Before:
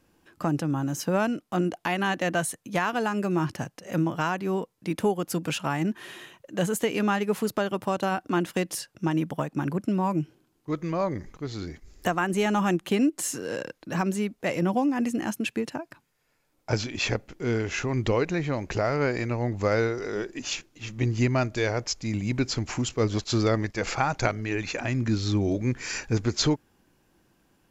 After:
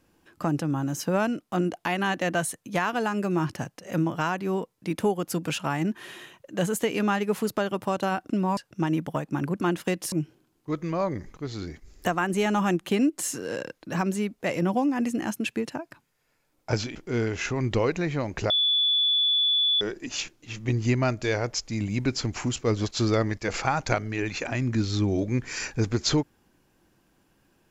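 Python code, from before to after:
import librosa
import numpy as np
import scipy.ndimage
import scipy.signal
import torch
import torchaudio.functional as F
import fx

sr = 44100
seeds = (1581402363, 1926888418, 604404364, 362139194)

y = fx.edit(x, sr, fx.swap(start_s=8.3, length_s=0.51, other_s=9.85, other_length_s=0.27),
    fx.cut(start_s=16.95, length_s=0.33),
    fx.bleep(start_s=18.83, length_s=1.31, hz=3450.0, db=-19.5), tone=tone)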